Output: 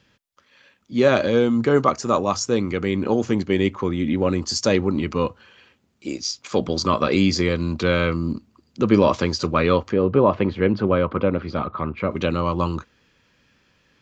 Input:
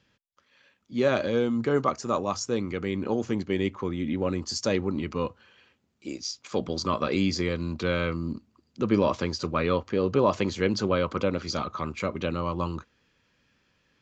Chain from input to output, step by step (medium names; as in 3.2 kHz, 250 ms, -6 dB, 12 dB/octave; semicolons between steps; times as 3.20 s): 9.93–12.11 s: distance through air 450 m; trim +7 dB